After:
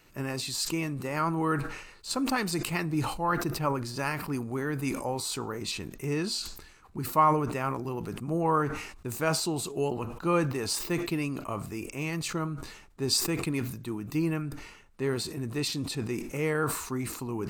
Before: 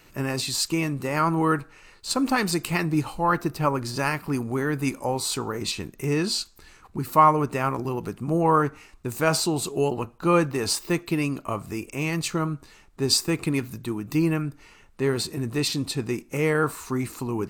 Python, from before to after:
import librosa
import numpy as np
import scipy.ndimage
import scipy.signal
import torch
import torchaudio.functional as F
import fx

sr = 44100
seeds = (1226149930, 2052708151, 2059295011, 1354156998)

y = fx.sustainer(x, sr, db_per_s=65.0)
y = y * librosa.db_to_amplitude(-6.0)